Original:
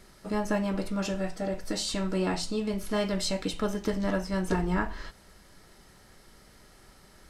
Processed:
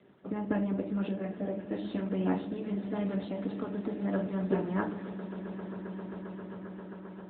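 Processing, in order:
0:01.68–0:02.38: mains-hum notches 50/100/150/200/250/300/350/400 Hz
high-pass filter 110 Hz 24 dB per octave
parametric band 140 Hz −5 dB 0.91 octaves
harmonic and percussive parts rebalanced harmonic −10 dB
tilt shelving filter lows +6 dB, about 770 Hz
0:03.11–0:04.12: downward compressor 12 to 1, threshold −31 dBFS, peak gain reduction 9 dB
echo that builds up and dies away 133 ms, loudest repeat 8, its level −18 dB
on a send at −6.5 dB: convolution reverb RT60 0.55 s, pre-delay 4 ms
on the sum: AMR narrowband 10.2 kbit/s 8,000 Hz

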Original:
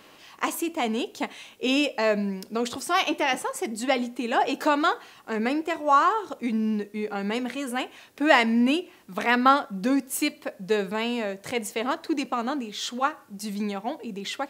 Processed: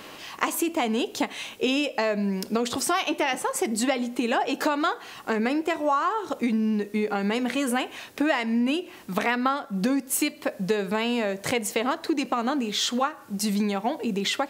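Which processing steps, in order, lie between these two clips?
downward compressor 6 to 1, threshold −31 dBFS, peak gain reduction 17.5 dB
level +9 dB

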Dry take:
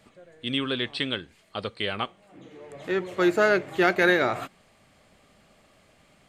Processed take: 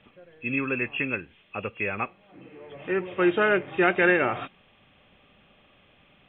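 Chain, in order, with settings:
hearing-aid frequency compression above 2,400 Hz 4 to 1
notch filter 650 Hz, Q 12

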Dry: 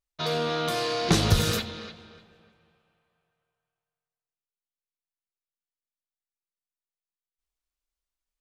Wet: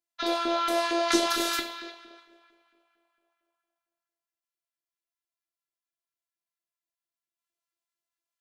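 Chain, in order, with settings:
auto-filter high-pass saw up 4.4 Hz 300–1,700 Hz
coupled-rooms reverb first 0.48 s, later 1.6 s, from −27 dB, DRR 6 dB
phases set to zero 339 Hz

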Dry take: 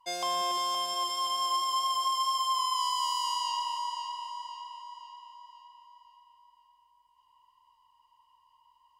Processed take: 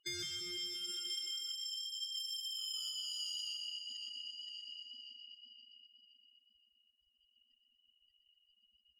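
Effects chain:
sub-octave generator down 2 octaves, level −3 dB
gate on every frequency bin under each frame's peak −20 dB strong
0:02.17–0:02.91: leveller curve on the samples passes 1
downward compressor 6 to 1, threshold −40 dBFS, peak gain reduction 13.5 dB
soft clipping −36.5 dBFS, distortion −20 dB
linear-phase brick-wall band-stop 410–1,200 Hz
echo with a time of its own for lows and highs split 1,600 Hz, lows 171 ms, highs 122 ms, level −5.5 dB
level +6 dB

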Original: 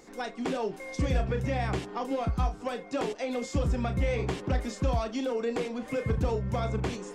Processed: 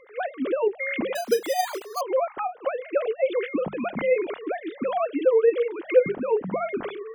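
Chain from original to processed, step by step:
three sine waves on the formant tracks
0:01.15–0:02.01: bad sample-rate conversion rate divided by 8×, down none, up hold
mains-hum notches 50/100/150/200 Hz
level +4.5 dB

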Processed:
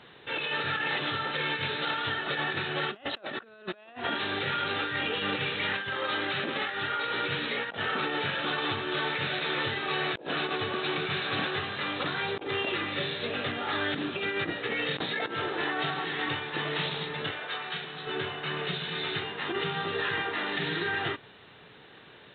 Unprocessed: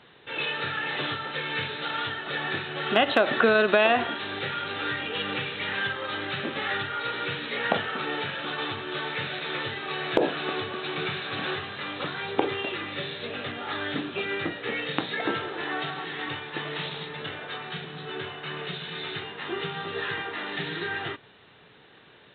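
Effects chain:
compressor whose output falls as the input rises −31 dBFS, ratio −0.5
0:05.91–0:07.14: high-pass filter 170 Hz 6 dB per octave
0:17.31–0:18.07: low-shelf EQ 340 Hz −11.5 dB

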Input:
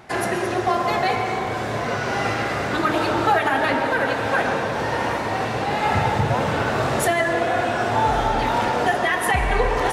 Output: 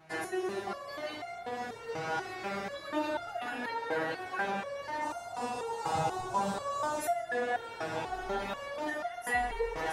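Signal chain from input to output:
0:05.01–0:06.98: graphic EQ with 10 bands 1,000 Hz +9 dB, 2,000 Hz −10 dB, 8,000 Hz +11 dB
step-sequenced resonator 4.1 Hz 160–700 Hz

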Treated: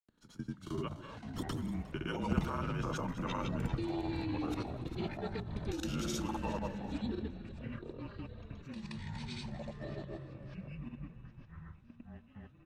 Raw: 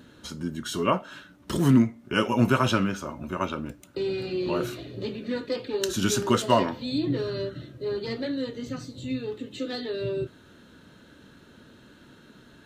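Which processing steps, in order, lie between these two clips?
source passing by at 0:03.29, 15 m/s, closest 16 metres
high-shelf EQ 2,400 Hz −3 dB
notch filter 590 Hz, Q 14
output level in coarse steps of 20 dB
frequency shifter −46 Hz
echo with shifted repeats 241 ms, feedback 37%, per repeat −36 Hz, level −12 dB
granular cloud, grains 20 per second, pitch spread up and down by 0 semitones
delay with pitch and tempo change per echo 172 ms, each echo −7 semitones, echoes 2, each echo −6 dB
level +4 dB

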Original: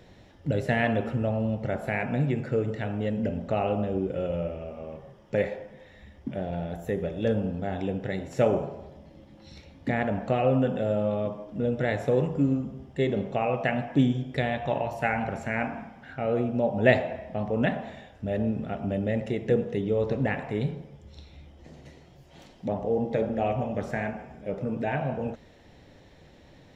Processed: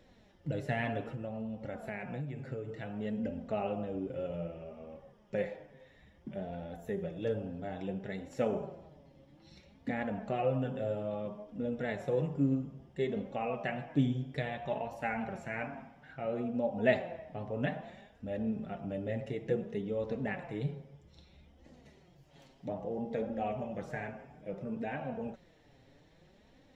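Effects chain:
flanger 0.6 Hz, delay 3.5 ms, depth 4.2 ms, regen +29%
0:01.01–0:02.96: downward compressor 6 to 1, threshold −31 dBFS, peak gain reduction 8.5 dB
level −5 dB

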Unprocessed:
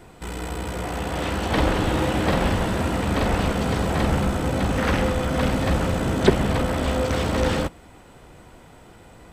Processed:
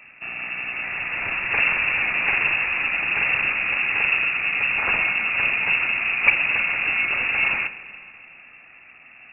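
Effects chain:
spring reverb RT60 2.5 s, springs 43/56 ms, chirp 80 ms, DRR 13 dB
voice inversion scrambler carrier 2,700 Hz
level −1 dB

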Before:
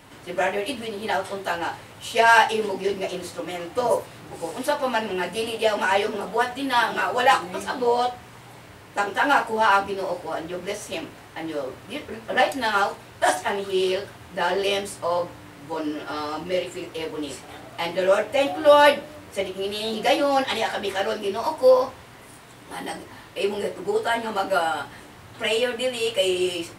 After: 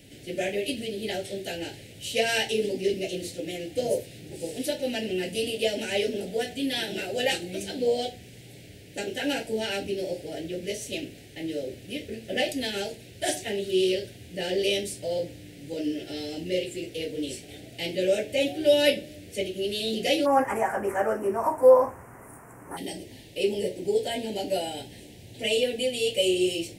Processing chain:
Butterworth band-reject 1,100 Hz, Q 0.6, from 0:20.25 3,800 Hz, from 0:22.76 1,200 Hz

